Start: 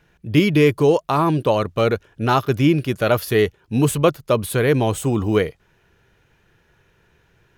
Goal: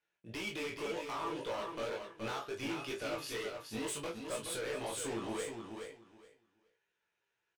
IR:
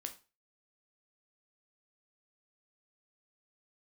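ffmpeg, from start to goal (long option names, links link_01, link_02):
-filter_complex "[0:a]lowpass=frequency=8400:width=0.5412,lowpass=frequency=8400:width=1.3066,aemphasis=mode=production:type=riaa,agate=range=-17dB:threshold=-56dB:ratio=16:detection=peak,bass=frequency=250:gain=-5,treble=frequency=4000:gain=-8,acompressor=threshold=-26dB:ratio=4,flanger=delay=20:depth=7.5:speed=2,asoftclip=type=hard:threshold=-32dB,asplit=2[link_01][link_02];[link_02]adelay=18,volume=-5.5dB[link_03];[link_01][link_03]amix=inputs=2:normalize=0,aecho=1:1:422|844|1266:0.501|0.0902|0.0162[link_04];[1:a]atrim=start_sample=2205,asetrate=74970,aresample=44100[link_05];[link_04][link_05]afir=irnorm=-1:irlink=0,volume=2dB"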